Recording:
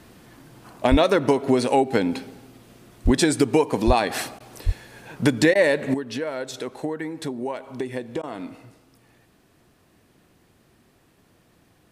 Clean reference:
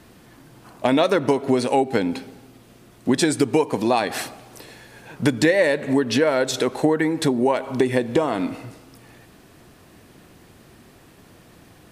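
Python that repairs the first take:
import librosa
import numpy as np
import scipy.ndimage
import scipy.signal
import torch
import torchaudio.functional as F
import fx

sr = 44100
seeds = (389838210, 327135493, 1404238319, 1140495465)

y = fx.fix_deplosive(x, sr, at_s=(0.9, 3.04, 3.86, 4.65))
y = fx.fix_interpolate(y, sr, at_s=(4.39, 5.54, 8.22), length_ms=11.0)
y = fx.gain(y, sr, db=fx.steps((0.0, 0.0), (5.94, 10.0)))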